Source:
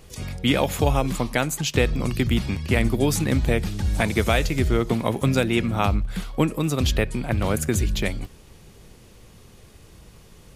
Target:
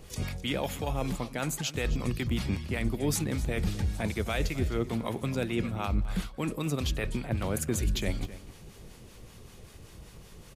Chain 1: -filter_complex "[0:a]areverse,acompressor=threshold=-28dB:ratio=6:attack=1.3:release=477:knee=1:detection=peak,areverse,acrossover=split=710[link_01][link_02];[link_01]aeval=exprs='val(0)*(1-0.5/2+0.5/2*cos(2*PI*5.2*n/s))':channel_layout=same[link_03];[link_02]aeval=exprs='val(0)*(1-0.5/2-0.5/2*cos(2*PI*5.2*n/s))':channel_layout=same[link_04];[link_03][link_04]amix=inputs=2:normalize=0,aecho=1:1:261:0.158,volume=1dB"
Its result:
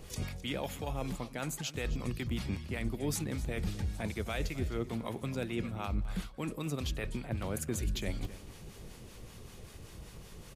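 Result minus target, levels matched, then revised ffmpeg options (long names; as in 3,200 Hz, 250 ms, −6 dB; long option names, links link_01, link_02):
downward compressor: peak gain reduction +5.5 dB
-filter_complex "[0:a]areverse,acompressor=threshold=-21.5dB:ratio=6:attack=1.3:release=477:knee=1:detection=peak,areverse,acrossover=split=710[link_01][link_02];[link_01]aeval=exprs='val(0)*(1-0.5/2+0.5/2*cos(2*PI*5.2*n/s))':channel_layout=same[link_03];[link_02]aeval=exprs='val(0)*(1-0.5/2-0.5/2*cos(2*PI*5.2*n/s))':channel_layout=same[link_04];[link_03][link_04]amix=inputs=2:normalize=0,aecho=1:1:261:0.158,volume=1dB"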